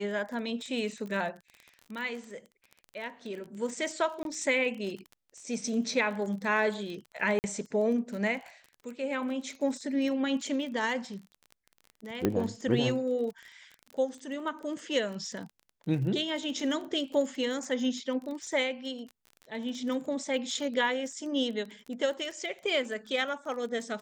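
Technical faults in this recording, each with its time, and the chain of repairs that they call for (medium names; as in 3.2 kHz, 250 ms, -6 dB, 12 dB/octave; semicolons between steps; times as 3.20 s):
crackle 25 per s -37 dBFS
4.23–4.25 s: dropout 22 ms
7.39–7.44 s: dropout 49 ms
12.25 s: pop -13 dBFS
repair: de-click; interpolate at 4.23 s, 22 ms; interpolate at 7.39 s, 49 ms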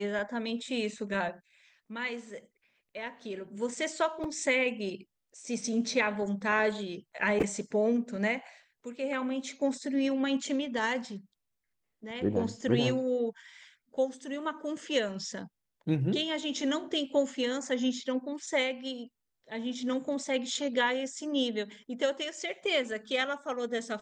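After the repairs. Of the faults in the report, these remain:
nothing left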